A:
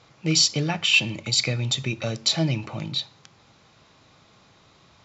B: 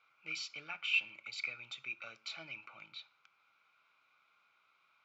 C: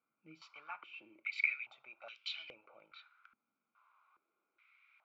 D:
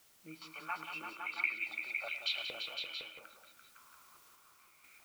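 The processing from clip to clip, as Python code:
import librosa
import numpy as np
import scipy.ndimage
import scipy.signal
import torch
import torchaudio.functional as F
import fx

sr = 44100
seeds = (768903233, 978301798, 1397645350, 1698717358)

y1 = fx.double_bandpass(x, sr, hz=1800.0, octaves=0.72)
y1 = y1 * 10.0 ** (-6.0 / 20.0)
y2 = fx.filter_held_bandpass(y1, sr, hz=2.4, low_hz=240.0, high_hz=3100.0)
y2 = y2 * 10.0 ** (9.0 / 20.0)
y3 = fx.quant_dither(y2, sr, seeds[0], bits=12, dither='triangular')
y3 = fx.chopper(y3, sr, hz=0.62, depth_pct=60, duty_pct=70)
y3 = fx.echo_multitap(y3, sr, ms=(109, 182, 340, 509, 674, 687), db=(-17.0, -9.5, -7.5, -6.0, -11.0, -11.0))
y3 = y3 * 10.0 ** (6.5 / 20.0)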